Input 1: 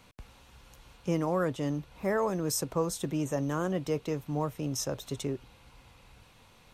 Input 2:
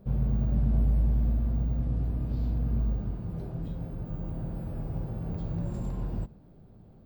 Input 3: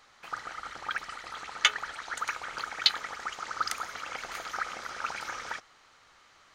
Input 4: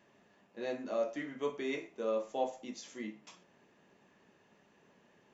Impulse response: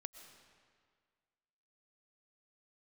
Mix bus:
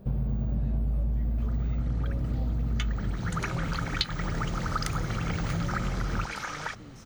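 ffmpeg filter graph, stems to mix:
-filter_complex "[0:a]lowpass=frequency=2900:poles=1,adelay=2200,volume=-16.5dB[link_01];[1:a]volume=2dB,asplit=2[link_02][link_03];[link_03]volume=-3.5dB[link_04];[2:a]adelay=1150,volume=2dB[link_05];[3:a]volume=-11dB,asplit=2[link_06][link_07];[link_07]apad=whole_len=339470[link_08];[link_05][link_08]sidechaincompress=threshold=-54dB:ratio=8:attack=16:release=839[link_09];[4:a]atrim=start_sample=2205[link_10];[link_04][link_10]afir=irnorm=-1:irlink=0[link_11];[link_01][link_02][link_09][link_06][link_11]amix=inputs=5:normalize=0,acompressor=threshold=-25dB:ratio=5"

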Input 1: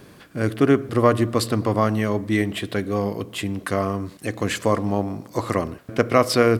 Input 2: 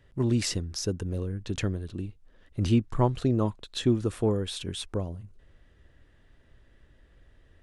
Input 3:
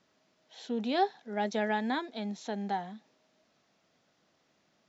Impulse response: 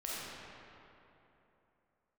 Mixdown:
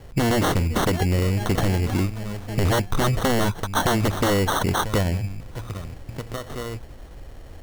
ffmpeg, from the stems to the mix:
-filter_complex "[0:a]asubboost=boost=10:cutoff=100,acompressor=threshold=-21dB:ratio=4,adelay=200,volume=-8.5dB[link_01];[1:a]aeval=exprs='0.282*sin(PI/2*5.01*val(0)/0.282)':channel_layout=same,volume=-1dB[link_02];[2:a]volume=-1.5dB[link_03];[link_01][link_02][link_03]amix=inputs=3:normalize=0,acrusher=samples=18:mix=1:aa=0.000001,acompressor=threshold=-18dB:ratio=6"

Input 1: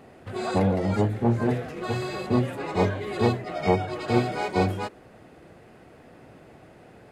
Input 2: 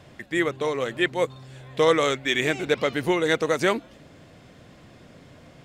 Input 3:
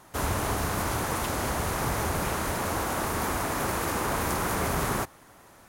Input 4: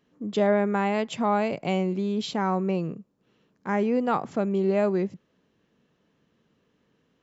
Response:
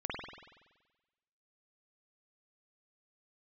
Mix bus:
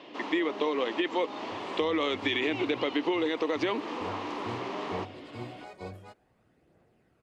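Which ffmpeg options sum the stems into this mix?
-filter_complex "[0:a]aphaser=in_gain=1:out_gain=1:delay=1.9:decay=0.35:speed=0.54:type=triangular,adelay=1250,volume=-18.5dB[link_01];[1:a]volume=3dB[link_02];[2:a]volume=-7.5dB[link_03];[3:a]highpass=frequency=250:width=0.5412,highpass=frequency=250:width=1.3066,volume=-18dB[link_04];[link_02][link_03]amix=inputs=2:normalize=0,highpass=frequency=260:width=0.5412,highpass=frequency=260:width=1.3066,equalizer=frequency=300:width_type=q:width=4:gain=7,equalizer=frequency=600:width_type=q:width=4:gain=-3,equalizer=frequency=990:width_type=q:width=4:gain=4,equalizer=frequency=1500:width_type=q:width=4:gain=-9,equalizer=frequency=2900:width_type=q:width=4:gain=6,lowpass=frequency=4500:width=0.5412,lowpass=frequency=4500:width=1.3066,alimiter=limit=-12dB:level=0:latency=1:release=30,volume=0dB[link_05];[link_01][link_04][link_05]amix=inputs=3:normalize=0,acompressor=threshold=-25dB:ratio=6"

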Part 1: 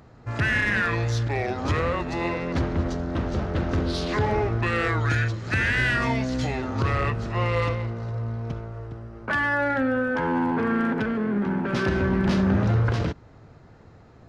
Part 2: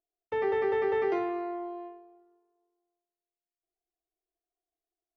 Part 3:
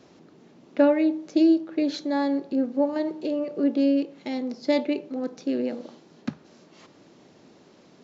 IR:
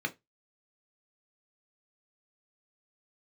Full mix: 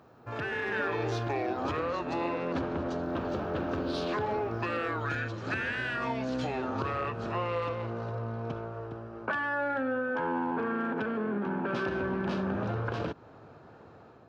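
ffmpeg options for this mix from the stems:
-filter_complex "[0:a]bass=frequency=250:gain=-9,treble=frequency=4000:gain=-12,acompressor=threshold=-32dB:ratio=4,volume=-2dB[link_01];[1:a]aemphasis=mode=production:type=riaa,volume=-10dB,asplit=3[link_02][link_03][link_04];[link_02]atrim=end=1.77,asetpts=PTS-STARTPTS,afade=type=out:start_time=1.766:duration=0.004:curve=hsin[link_05];[link_03]atrim=start=1.77:end=3.03,asetpts=PTS-STARTPTS,volume=0[link_06];[link_04]atrim=start=3.03,asetpts=PTS-STARTPTS,afade=type=in:duration=0.004:curve=hsin[link_07];[link_05][link_06][link_07]concat=n=3:v=0:a=1[link_08];[2:a]acrossover=split=150[link_09][link_10];[link_10]acompressor=threshold=-32dB:ratio=2[link_11];[link_09][link_11]amix=inputs=2:normalize=0,volume=-19dB[link_12];[link_01][link_08][link_12]amix=inputs=3:normalize=0,highpass=90,equalizer=frequency=2000:width=6.7:gain=-11.5,dynaudnorm=framelen=380:gausssize=3:maxgain=5dB"

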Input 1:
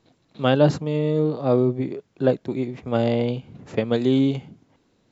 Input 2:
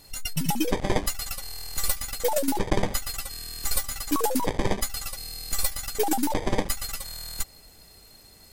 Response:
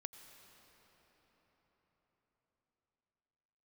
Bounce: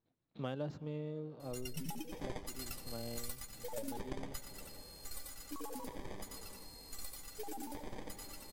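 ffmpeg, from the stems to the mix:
-filter_complex "[0:a]agate=range=-14dB:threshold=-52dB:ratio=16:detection=peak,lowshelf=frequency=89:gain=7,adynamicsmooth=sensitivity=6:basefreq=4700,volume=-11dB,afade=type=out:start_time=1:duration=0.31:silence=0.237137,asplit=3[link_01][link_02][link_03];[link_02]volume=-11dB[link_04];[1:a]adelay=1400,volume=-12dB,asplit=3[link_05][link_06][link_07];[link_06]volume=-3.5dB[link_08];[link_07]volume=-11dB[link_09];[link_03]apad=whole_len=437579[link_10];[link_05][link_10]sidechaingate=range=-33dB:threshold=-56dB:ratio=16:detection=peak[link_11];[2:a]atrim=start_sample=2205[link_12];[link_04][link_08]amix=inputs=2:normalize=0[link_13];[link_13][link_12]afir=irnorm=-1:irlink=0[link_14];[link_09]aecho=0:1:88:1[link_15];[link_01][link_11][link_14][link_15]amix=inputs=4:normalize=0,acompressor=threshold=-39dB:ratio=4"

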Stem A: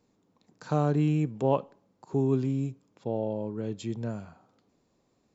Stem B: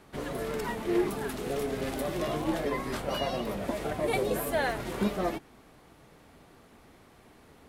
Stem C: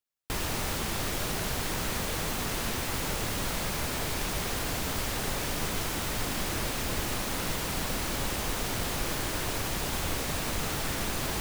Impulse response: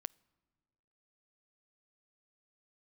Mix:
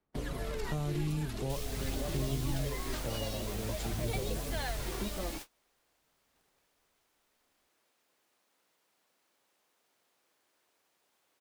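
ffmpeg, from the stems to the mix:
-filter_complex "[0:a]volume=-1.5dB[link_01];[1:a]aphaser=in_gain=1:out_gain=1:delay=3.6:decay=0.4:speed=0.47:type=sinusoidal,acrossover=split=6300[link_02][link_03];[link_03]acompressor=threshold=-52dB:ratio=4:attack=1:release=60[link_04];[link_02][link_04]amix=inputs=2:normalize=0,volume=-3dB,asplit=2[link_05][link_06];[link_06]volume=-7dB[link_07];[2:a]highpass=390,adelay=1200,volume=-10dB[link_08];[3:a]atrim=start_sample=2205[link_09];[link_07][link_09]afir=irnorm=-1:irlink=0[link_10];[link_01][link_05][link_08][link_10]amix=inputs=4:normalize=0,agate=range=-32dB:threshold=-38dB:ratio=16:detection=peak,lowshelf=frequency=61:gain=8,acrossover=split=120|3000[link_11][link_12][link_13];[link_12]acompressor=threshold=-39dB:ratio=4[link_14];[link_11][link_14][link_13]amix=inputs=3:normalize=0"

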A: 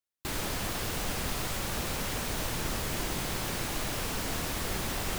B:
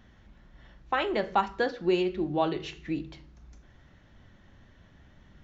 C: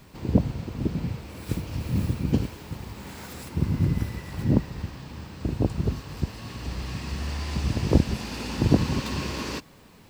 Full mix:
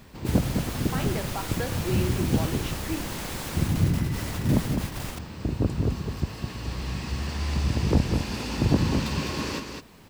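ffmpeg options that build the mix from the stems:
ffmpeg -i stem1.wav -i stem2.wav -i stem3.wav -filter_complex "[0:a]volume=-2dB[link_01];[1:a]alimiter=limit=-23.5dB:level=0:latency=1:release=228,volume=0dB,asplit=2[link_02][link_03];[2:a]asoftclip=type=tanh:threshold=-12.5dB,volume=0.5dB,asplit=2[link_04][link_05];[link_05]volume=-6dB[link_06];[link_03]apad=whole_len=228673[link_07];[link_01][link_07]sidechaingate=range=-33dB:threshold=-55dB:ratio=16:detection=peak[link_08];[link_06]aecho=0:1:206:1[link_09];[link_08][link_02][link_04][link_09]amix=inputs=4:normalize=0" out.wav

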